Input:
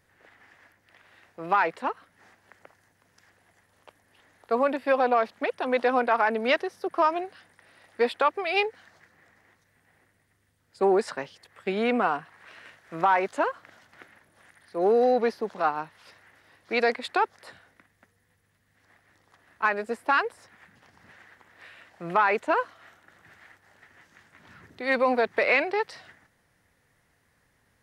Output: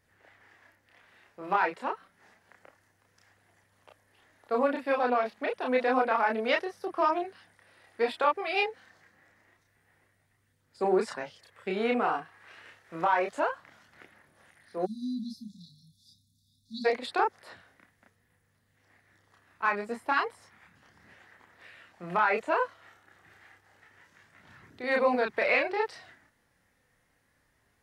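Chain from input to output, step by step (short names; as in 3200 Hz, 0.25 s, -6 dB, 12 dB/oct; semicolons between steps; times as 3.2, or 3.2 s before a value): chorus voices 2, 0.14 Hz, delay 30 ms, depth 2.7 ms; spectral delete 14.85–16.85, 260–3400 Hz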